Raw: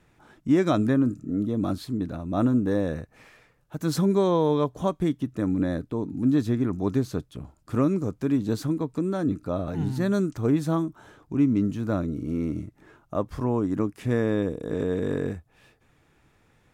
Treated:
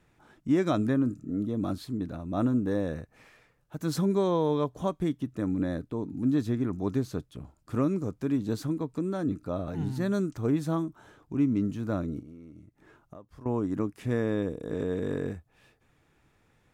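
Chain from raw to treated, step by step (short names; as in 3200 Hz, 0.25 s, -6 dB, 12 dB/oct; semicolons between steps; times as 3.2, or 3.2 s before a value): 12.19–13.46 compressor 10:1, threshold -41 dBFS, peak gain reduction 20.5 dB; gain -4 dB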